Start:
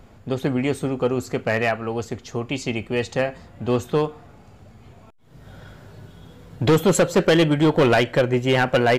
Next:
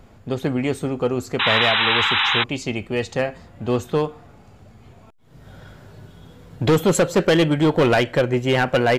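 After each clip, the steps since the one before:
sound drawn into the spectrogram noise, 0:01.39–0:02.44, 780–4,000 Hz −19 dBFS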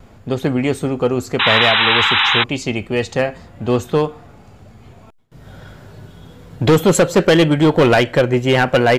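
noise gate with hold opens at −43 dBFS
level +4.5 dB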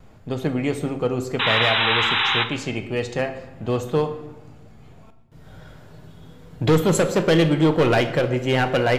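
rectangular room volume 480 cubic metres, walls mixed, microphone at 0.53 metres
level −6.5 dB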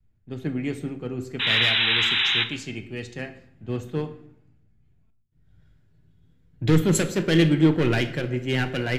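flat-topped bell 770 Hz −9.5 dB
multiband upward and downward expander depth 70%
level −3 dB

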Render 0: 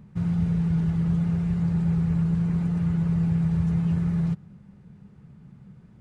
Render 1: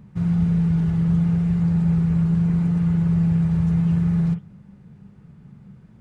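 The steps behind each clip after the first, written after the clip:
convolution reverb, pre-delay 41 ms, DRR 7.5 dB
level +2 dB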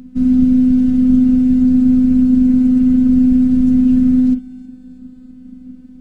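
graphic EQ with 10 bands 125 Hz +6 dB, 250 Hz +7 dB, 500 Hz −4 dB, 1,000 Hz −11 dB, 2,000 Hz −6 dB
phases set to zero 253 Hz
feedback echo with a high-pass in the loop 321 ms, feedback 64%, high-pass 980 Hz, level −17.5 dB
level +8 dB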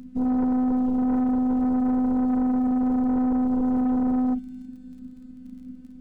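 soft clipping −14.5 dBFS, distortion −11 dB
surface crackle 33 per second −42 dBFS
level −5.5 dB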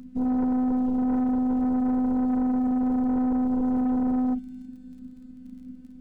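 notch filter 1,200 Hz, Q 17
level −1.5 dB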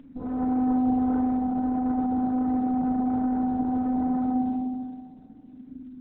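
mains-hum notches 50/100/150/200/250 Hz
feedback delay network reverb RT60 1.8 s, low-frequency decay 1.55×, high-frequency decay 0.35×, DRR −1.5 dB
level −2.5 dB
Opus 8 kbit/s 48,000 Hz

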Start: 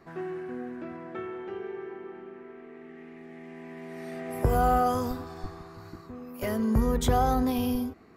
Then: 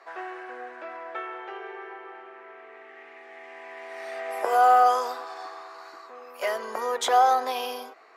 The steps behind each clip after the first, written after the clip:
high-pass filter 570 Hz 24 dB per octave
high-frequency loss of the air 50 metres
level +8 dB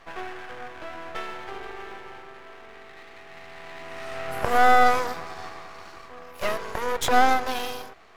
half-wave rectification
level +5 dB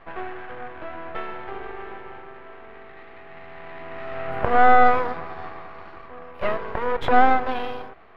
high-frequency loss of the air 470 metres
level +4.5 dB

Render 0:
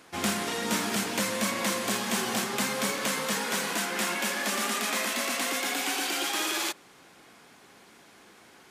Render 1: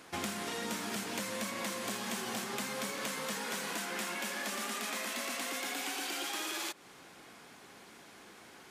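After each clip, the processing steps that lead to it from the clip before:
downward compressor 6 to 1, threshold −35 dBFS, peak gain reduction 11.5 dB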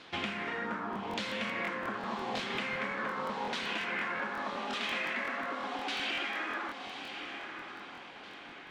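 auto-filter low-pass saw down 0.85 Hz 810–3,900 Hz
feedback delay with all-pass diffusion 1,036 ms, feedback 42%, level −7.5 dB
regular buffer underruns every 0.18 s, samples 1,024, repeat, from 0:00.91

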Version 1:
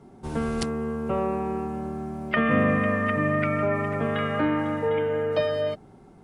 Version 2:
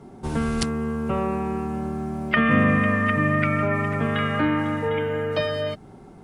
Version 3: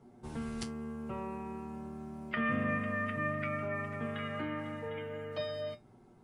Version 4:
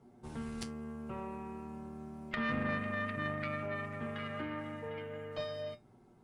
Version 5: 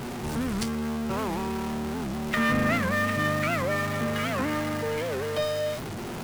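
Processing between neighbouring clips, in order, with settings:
dynamic equaliser 550 Hz, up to −7 dB, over −37 dBFS, Q 0.77; level +5.5 dB
tuned comb filter 120 Hz, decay 0.17 s, harmonics all, mix 80%; level −8 dB
tube saturation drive 24 dB, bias 0.7; level +1.5 dB
converter with a step at zero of −38 dBFS; wow of a warped record 78 rpm, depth 250 cents; level +8.5 dB

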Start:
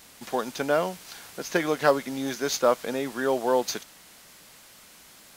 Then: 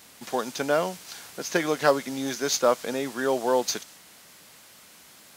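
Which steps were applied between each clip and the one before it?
high-pass filter 71 Hz
dynamic equaliser 6,400 Hz, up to +4 dB, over −48 dBFS, Q 0.87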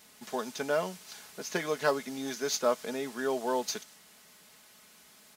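comb filter 4.7 ms, depth 47%
level −7 dB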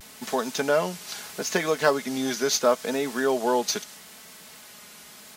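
in parallel at +0.5 dB: downward compressor, threshold −37 dBFS, peak gain reduction 15 dB
on the sum: pitch vibrato 0.76 Hz 46 cents
level +4.5 dB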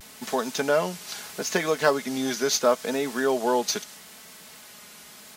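no processing that can be heard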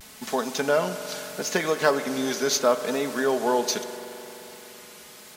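surface crackle 29 per second −43 dBFS
spring reverb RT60 3.8 s, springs 43 ms, chirp 40 ms, DRR 9.5 dB

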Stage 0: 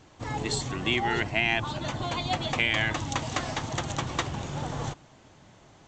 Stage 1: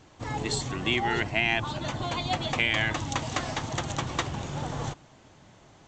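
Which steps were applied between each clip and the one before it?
no processing that can be heard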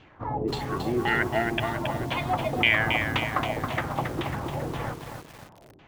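auto-filter low-pass saw down 1.9 Hz 330–3,100 Hz
feedback echo at a low word length 273 ms, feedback 55%, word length 7 bits, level −5.5 dB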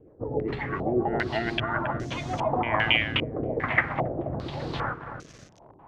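rotating-speaker cabinet horn 7.5 Hz, later 0.9 Hz, at 0:01.07
low-pass on a step sequencer 2.5 Hz 460–6,200 Hz

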